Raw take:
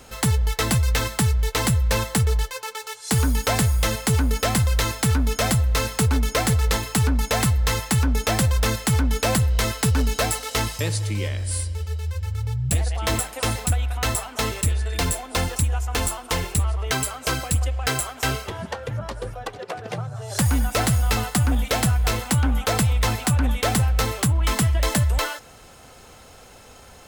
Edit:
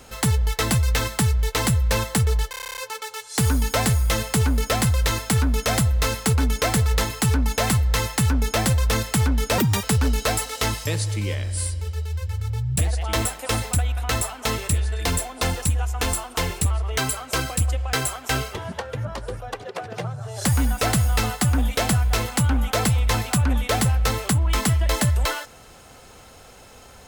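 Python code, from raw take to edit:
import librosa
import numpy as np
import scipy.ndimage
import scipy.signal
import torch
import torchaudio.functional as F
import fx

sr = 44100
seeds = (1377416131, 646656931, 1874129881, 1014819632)

y = fx.edit(x, sr, fx.stutter(start_s=2.5, slice_s=0.03, count=10),
    fx.speed_span(start_s=9.31, length_s=0.46, speed=1.81), tone=tone)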